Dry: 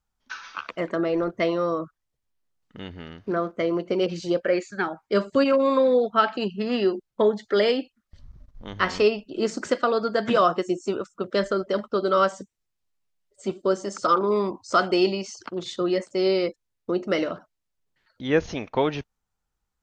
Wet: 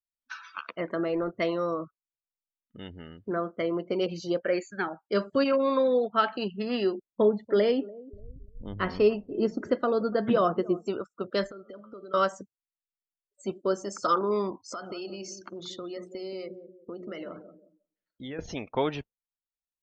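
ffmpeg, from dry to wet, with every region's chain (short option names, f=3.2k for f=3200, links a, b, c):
-filter_complex "[0:a]asettb=1/sr,asplit=3[a][b][c];[a]atrim=end=7.124[d];[b]atrim=start=7.12:end=10.86,asetpts=PTS-STARTPTS,afade=t=in:d=0.004:c=qsin,afade=t=out:st=3.736:d=0.004:c=qsin,acrossover=split=6000[e][f];[f]acompressor=threshold=-55dB:ratio=4:attack=1:release=60[g];[e][g]amix=inputs=2:normalize=0,tiltshelf=f=660:g=6,asplit=2[h][i];[i]adelay=290,lowpass=f=890:p=1,volume=-19dB,asplit=2[j][k];[k]adelay=290,lowpass=f=890:p=1,volume=0.34,asplit=2[l][m];[m]adelay=290,lowpass=f=890:p=1,volume=0.34[n];[h][j][l][n]amix=inputs=4:normalize=0,atrim=end_sample=164934[o];[c]atrim=start=10.856[p];[d][o]acrossfade=d=0.004:c1=hsin:c2=qsin[q];[q][p]acrossfade=d=0.004:c1=qsin:c2=hsin,asettb=1/sr,asplit=3[r][s][t];[r]atrim=end=11.464[u];[s]atrim=start=11.46:end=12.14,asetpts=PTS-STARTPTS,afade=t=in:d=0.004:c=qsin,afade=t=out:st=0.676:d=0.004:c=qsin,bandreject=f=107.6:t=h:w=4,bandreject=f=215.2:t=h:w=4,bandreject=f=322.8:t=h:w=4,bandreject=f=430.4:t=h:w=4,bandreject=f=538:t=h:w=4,bandreject=f=645.6:t=h:w=4,bandreject=f=753.2:t=h:w=4,bandreject=f=860.8:t=h:w=4,bandreject=f=968.4:t=h:w=4,bandreject=f=1.076k:t=h:w=4,bandreject=f=1.1836k:t=h:w=4,bandreject=f=1.2912k:t=h:w=4,bandreject=f=1.3988k:t=h:w=4,bandreject=f=1.5064k:t=h:w=4,bandreject=f=1.614k:t=h:w=4,bandreject=f=1.7216k:t=h:w=4,bandreject=f=1.8292k:t=h:w=4,bandreject=f=1.9368k:t=h:w=4,bandreject=f=2.0444k:t=h:w=4,bandreject=f=2.152k:t=h:w=4,bandreject=f=2.2596k:t=h:w=4,bandreject=f=2.3672k:t=h:w=4,bandreject=f=2.4748k:t=h:w=4,bandreject=f=2.5824k:t=h:w=4,bandreject=f=2.69k:t=h:w=4,bandreject=f=2.7976k:t=h:w=4,bandreject=f=2.9052k:t=h:w=4,bandreject=f=3.0128k:t=h:w=4,bandreject=f=3.1204k:t=h:w=4,bandreject=f=3.228k:t=h:w=4,bandreject=f=3.3356k:t=h:w=4,bandreject=f=3.4432k:t=h:w=4,bandreject=f=3.5508k:t=h:w=4,bandreject=f=3.6584k:t=h:w=4,acompressor=threshold=-36dB:ratio=10:attack=3.2:release=140:knee=1:detection=peak[v];[t]atrim=start=12.136[w];[u][v]acrossfade=d=0.004:c1=hsin:c2=qsin[x];[x][w]acrossfade=d=0.004:c1=qsin:c2=hsin,asettb=1/sr,asplit=3[y][z][aa];[y]atrim=end=14.674[ab];[z]atrim=start=14.67:end=18.39,asetpts=PTS-STARTPTS,afade=t=in:d=0.004:c=qsin,afade=t=out:st=3.716:d=0.004:c=qsin,bandreject=f=60:t=h:w=6,bandreject=f=120:t=h:w=6,bandreject=f=180:t=h:w=6,bandreject=f=240:t=h:w=6,bandreject=f=300:t=h:w=6,bandreject=f=360:t=h:w=6,bandreject=f=420:t=h:w=6,bandreject=f=480:t=h:w=6,acompressor=threshold=-31dB:ratio=5:attack=3.2:release=140:knee=1:detection=peak,asplit=2[ac][ad];[ad]adelay=180,lowpass=f=1.1k:p=1,volume=-9dB,asplit=2[ae][af];[af]adelay=180,lowpass=f=1.1k:p=1,volume=0.41,asplit=2[ag][ah];[ah]adelay=180,lowpass=f=1.1k:p=1,volume=0.41,asplit=2[ai][aj];[aj]adelay=180,lowpass=f=1.1k:p=1,volume=0.41,asplit=2[ak][al];[al]adelay=180,lowpass=f=1.1k:p=1,volume=0.41[am];[ac][ae][ag][ai][ak][am]amix=inputs=6:normalize=0,atrim=end_sample=164052[an];[aa]atrim=start=18.386[ao];[ab][an]acrossfade=d=0.004:c1=hsin:c2=qsin[ap];[ap][ao]acrossfade=d=0.004:c1=qsin:c2=hsin,afftdn=nr=24:nf=-45,highshelf=f=6.2k:g=6.5,volume=-4.5dB"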